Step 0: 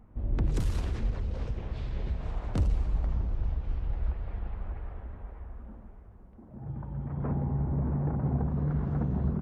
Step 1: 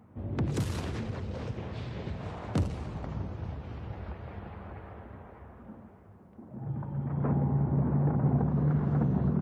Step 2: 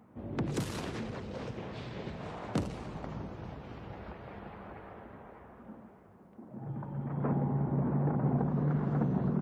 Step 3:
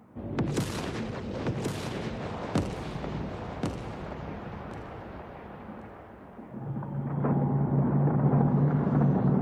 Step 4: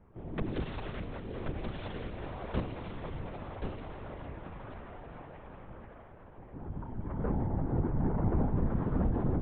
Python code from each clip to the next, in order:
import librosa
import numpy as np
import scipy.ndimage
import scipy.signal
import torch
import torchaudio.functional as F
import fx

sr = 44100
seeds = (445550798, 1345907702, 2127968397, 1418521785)

y1 = scipy.signal.sosfilt(scipy.signal.butter(4, 94.0, 'highpass', fs=sr, output='sos'), x)
y1 = F.gain(torch.from_numpy(y1), 3.5).numpy()
y2 = fx.peak_eq(y1, sr, hz=81.0, db=-12.5, octaves=1.1)
y3 = fx.echo_feedback(y2, sr, ms=1079, feedback_pct=18, wet_db=-4.0)
y3 = F.gain(torch.from_numpy(y3), 4.5).numpy()
y4 = fx.lpc_vocoder(y3, sr, seeds[0], excitation='whisper', order=10)
y4 = F.gain(torch.from_numpy(y4), -5.0).numpy()